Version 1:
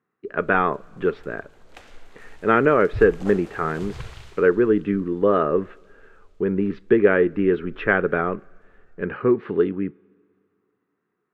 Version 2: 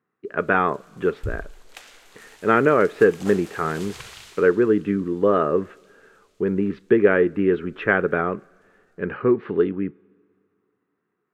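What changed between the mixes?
first sound: add tilt +3.5 dB/oct; second sound: entry -1.70 s

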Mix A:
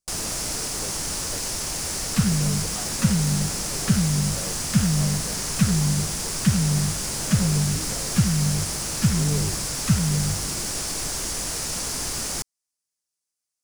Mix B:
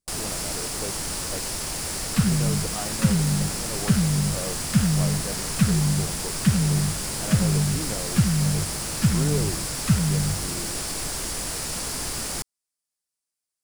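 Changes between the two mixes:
speech +5.5 dB; master: add bell 6200 Hz -5.5 dB 0.45 oct

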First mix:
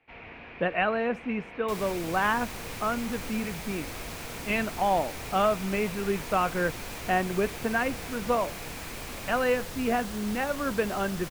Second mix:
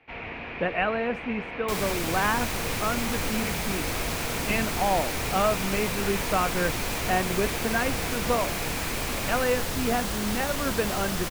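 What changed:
first sound +8.5 dB; second sound +9.0 dB

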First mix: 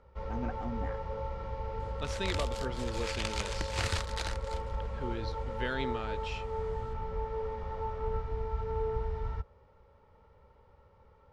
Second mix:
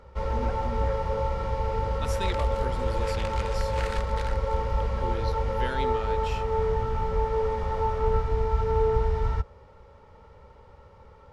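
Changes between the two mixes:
first sound +9.5 dB; second sound: add band-pass 1600 Hz, Q 1.2; master: remove air absorption 81 m

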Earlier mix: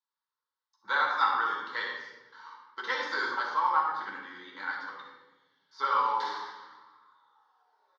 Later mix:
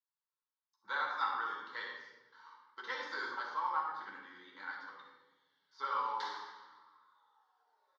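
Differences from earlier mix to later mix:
speech -9.0 dB; background: send -10.0 dB

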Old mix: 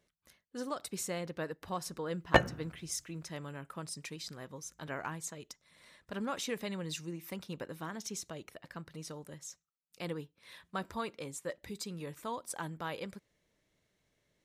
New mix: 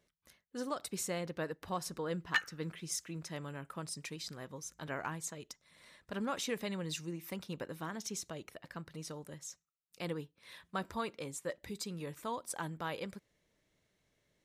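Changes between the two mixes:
background: add rippled Chebyshev high-pass 1200 Hz, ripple 3 dB; reverb: off

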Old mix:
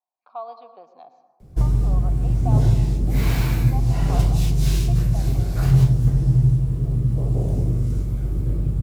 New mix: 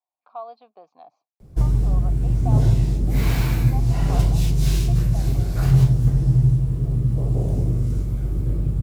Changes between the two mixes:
speech: add air absorption 68 m; reverb: off

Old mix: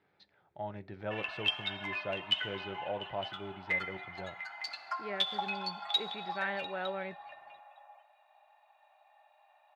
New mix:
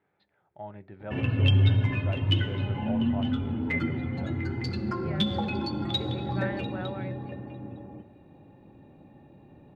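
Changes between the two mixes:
speech: add air absorption 350 m; background: remove Chebyshev high-pass 620 Hz, order 8

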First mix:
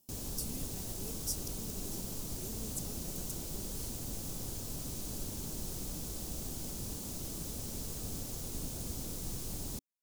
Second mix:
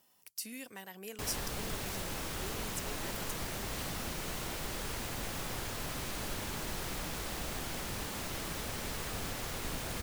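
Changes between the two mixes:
background: entry +1.10 s; master: remove EQ curve 270 Hz 0 dB, 1900 Hz -19 dB, 6400 Hz +1 dB

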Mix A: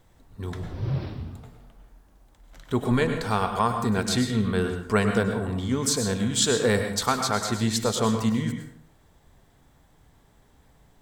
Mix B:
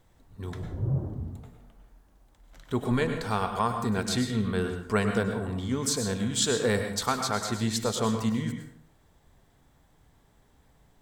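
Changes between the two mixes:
speech -3.5 dB; background: add Gaussian blur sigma 9.1 samples

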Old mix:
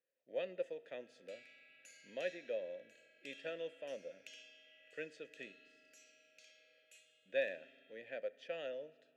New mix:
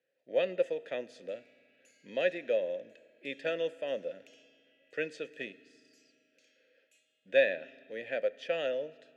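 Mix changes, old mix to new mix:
speech +11.0 dB; background -6.0 dB

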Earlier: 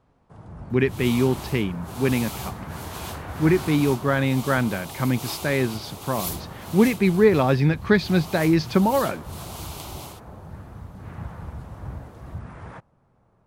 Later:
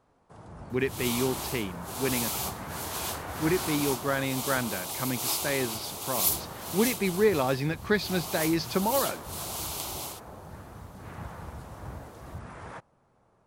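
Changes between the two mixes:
speech -5.5 dB; master: add tone controls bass -7 dB, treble +6 dB

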